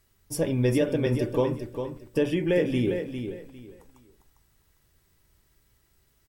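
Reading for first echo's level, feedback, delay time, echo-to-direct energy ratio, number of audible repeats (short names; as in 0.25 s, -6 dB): -8.0 dB, 24%, 0.402 s, -7.5 dB, 3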